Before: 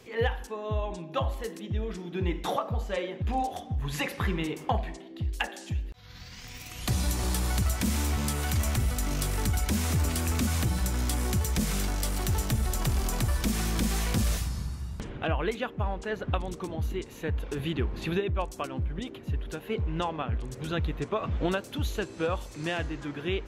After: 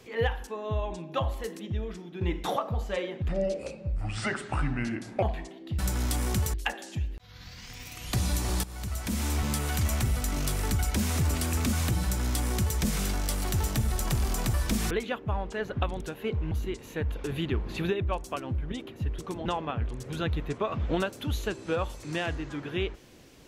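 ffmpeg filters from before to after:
-filter_complex "[0:a]asplit=12[a][b][c][d][e][f][g][h][i][j][k][l];[a]atrim=end=2.21,asetpts=PTS-STARTPTS,afade=t=out:st=1.66:d=0.55:silence=0.421697[m];[b]atrim=start=2.21:end=3.284,asetpts=PTS-STARTPTS,afade=t=in:d=0.004:c=hsin:silence=0.421697[n];[c]atrim=start=3.28:end=4.72,asetpts=PTS-STARTPTS,asetrate=32634,aresample=44100,atrim=end_sample=85816,asetpts=PTS-STARTPTS[o];[d]atrim=start=4.716:end=5.282[p];[e]atrim=start=10.768:end=11.522[q];[f]atrim=start=5.278:end=7.38,asetpts=PTS-STARTPTS,afade=t=out:st=2.098:d=0.004:c=hsin:silence=0.133352[r];[g]atrim=start=7.38:end=13.652,asetpts=PTS-STARTPTS,afade=t=in:d=0.74:silence=0.133352[s];[h]atrim=start=15.418:end=16.522[t];[i]atrim=start=19.458:end=19.972[u];[j]atrim=start=16.788:end=19.462[v];[k]atrim=start=16.518:end=16.792[w];[l]atrim=start=19.968[x];[m][n]concat=n=2:v=0:a=1[y];[y][o]acrossfade=d=0.004:c1=hsin:c2=hsin[z];[z][p]acrossfade=d=0.004:c1=hsin:c2=hsin[aa];[aa][q]acrossfade=d=0.004:c1=hsin:c2=hsin[ab];[r][s]concat=n=2:v=0:a=1[ac];[ab][ac]acrossfade=d=0.004:c1=hsin:c2=hsin[ad];[ad][t]acrossfade=d=0.004:c1=hsin:c2=hsin[ae];[ae][u]acrossfade=d=0.004:c1=hsin:c2=hsin[af];[af][v]acrossfade=d=0.004:c1=hsin:c2=hsin[ag];[ag][w]acrossfade=d=0.004:c1=hsin:c2=hsin[ah];[ah][x]acrossfade=d=0.004:c1=hsin:c2=hsin"

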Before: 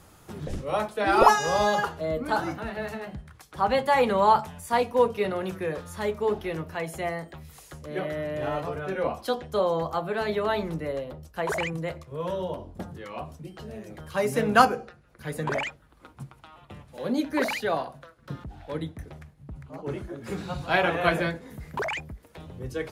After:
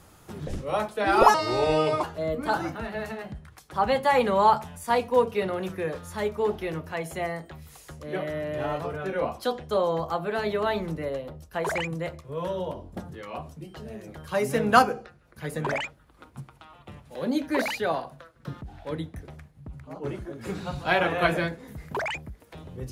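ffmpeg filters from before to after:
-filter_complex "[0:a]asplit=3[a][b][c];[a]atrim=end=1.344[d];[b]atrim=start=1.34:end=1.86,asetpts=PTS-STARTPTS,asetrate=33075,aresample=44100[e];[c]atrim=start=1.856[f];[d][e]acrossfade=d=0.004:c1=hsin:c2=hsin[g];[g][f]acrossfade=d=0.004:c1=hsin:c2=hsin"

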